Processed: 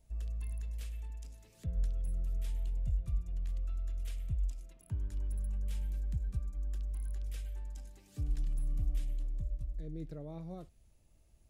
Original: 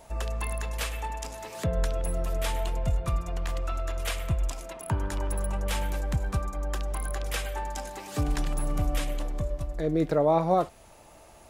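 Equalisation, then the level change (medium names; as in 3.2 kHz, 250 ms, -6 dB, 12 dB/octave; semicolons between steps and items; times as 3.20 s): amplifier tone stack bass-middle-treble 10-0-1; +1.0 dB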